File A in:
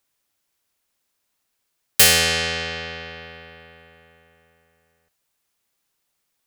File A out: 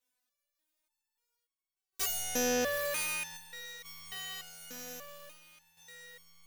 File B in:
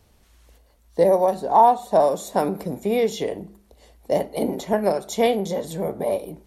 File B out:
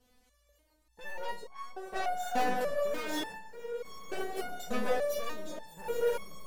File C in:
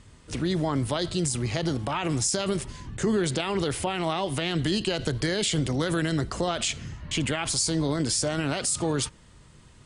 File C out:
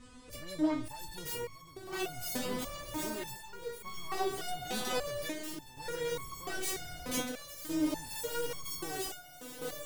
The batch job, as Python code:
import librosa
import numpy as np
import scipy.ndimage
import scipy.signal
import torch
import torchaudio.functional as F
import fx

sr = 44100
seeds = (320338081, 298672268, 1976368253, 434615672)

p1 = fx.self_delay(x, sr, depth_ms=0.4)
p2 = fx.peak_eq(p1, sr, hz=480.0, db=3.0, octaves=0.32)
p3 = fx.rider(p2, sr, range_db=5, speed_s=0.5)
p4 = 10.0 ** (-17.5 / 20.0) * np.tanh(p3 / 10.0 ** (-17.5 / 20.0))
p5 = p4 + fx.echo_diffused(p4, sr, ms=804, feedback_pct=57, wet_db=-5.5, dry=0)
p6 = fx.chopper(p5, sr, hz=0.52, depth_pct=65, duty_pct=75)
p7 = fx.fold_sine(p6, sr, drive_db=6, ceiling_db=-12.0)
p8 = fx.rev_schroeder(p7, sr, rt60_s=0.89, comb_ms=33, drr_db=18.5)
y = fx.resonator_held(p8, sr, hz=3.4, low_hz=250.0, high_hz=1100.0)